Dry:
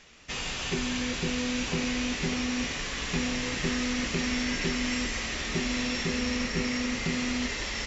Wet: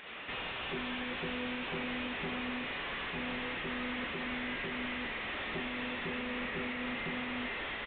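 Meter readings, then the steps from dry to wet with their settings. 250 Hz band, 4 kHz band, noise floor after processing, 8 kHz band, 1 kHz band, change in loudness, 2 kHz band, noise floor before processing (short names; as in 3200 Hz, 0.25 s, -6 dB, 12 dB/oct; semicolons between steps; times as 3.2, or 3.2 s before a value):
-10.0 dB, -8.5 dB, -40 dBFS, n/a, -2.0 dB, -7.5 dB, -4.5 dB, -35 dBFS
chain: pump 116 bpm, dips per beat 1, -10 dB, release 0.188 s; resonator 190 Hz, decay 1.4 s, mix 50%; overdrive pedal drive 36 dB, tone 1800 Hz, clips at -22.5 dBFS; downsampling 8000 Hz; gain -5.5 dB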